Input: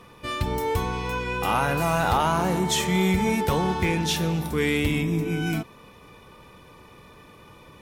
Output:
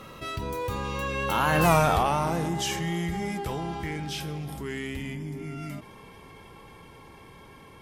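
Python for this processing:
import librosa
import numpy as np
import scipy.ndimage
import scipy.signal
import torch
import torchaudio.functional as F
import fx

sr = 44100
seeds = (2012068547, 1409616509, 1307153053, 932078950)

y = fx.doppler_pass(x, sr, speed_mps=32, closest_m=2.9, pass_at_s=1.7)
y = fx.env_flatten(y, sr, amount_pct=50)
y = y * 10.0 ** (4.0 / 20.0)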